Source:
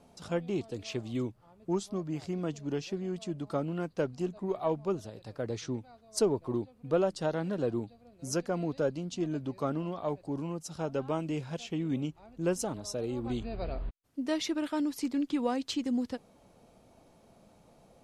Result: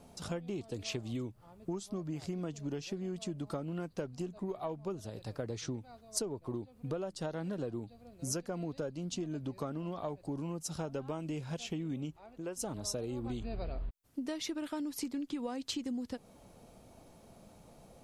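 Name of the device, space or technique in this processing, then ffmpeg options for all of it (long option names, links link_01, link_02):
ASMR close-microphone chain: -filter_complex "[0:a]lowshelf=frequency=130:gain=5,acompressor=threshold=-36dB:ratio=10,highshelf=frequency=7700:gain=7.5,asettb=1/sr,asplit=3[link_01][link_02][link_03];[link_01]atrim=end=12.174[link_04];[link_02]atrim=start=12.17:end=12.57,asetpts=PTS-STARTPTS,afade=type=in:duration=0.004:curve=qsin,afade=type=out:start_time=0.396:duration=0.004:curve=qsin,bass=frequency=250:gain=-12,treble=frequency=4000:gain=-6[link_05];[link_03]atrim=start=12.566[link_06];[link_04][link_05]acrossfade=duration=0.004:curve1=hsin:curve2=qsin[link_07];[link_07][link_06]acrossfade=duration=0.004:curve1=qsin:curve2=hsin,volume=1.5dB"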